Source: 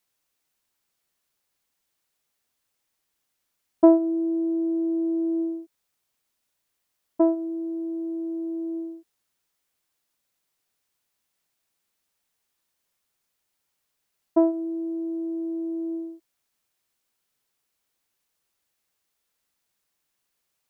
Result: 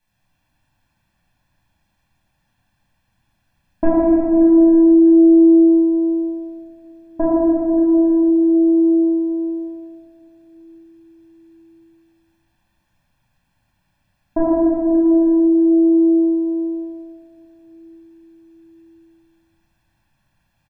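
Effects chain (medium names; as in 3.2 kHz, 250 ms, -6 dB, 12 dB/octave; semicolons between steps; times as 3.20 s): saturation -5.5 dBFS, distortion -23 dB; compression, threshold -23 dBFS, peak gain reduction 11 dB; tone controls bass +11 dB, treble -11 dB; comb 1.2 ms, depth 79%; reverberation RT60 3.3 s, pre-delay 3 ms, DRR -8 dB; trim +3 dB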